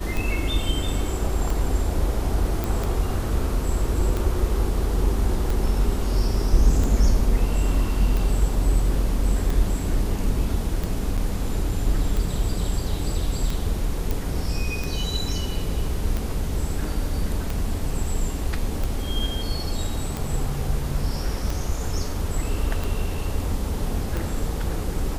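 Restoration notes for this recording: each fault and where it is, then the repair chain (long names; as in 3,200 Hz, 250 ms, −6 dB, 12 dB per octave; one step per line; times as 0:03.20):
scratch tick 45 rpm
0:02.64: click
0:11.17–0:11.18: drop-out 7.5 ms
0:14.11: click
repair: click removal
repair the gap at 0:11.17, 7.5 ms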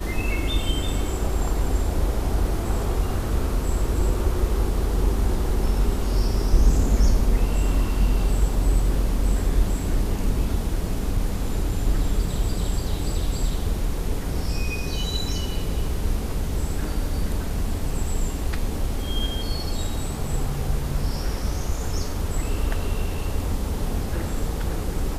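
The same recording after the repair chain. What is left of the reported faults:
none of them is left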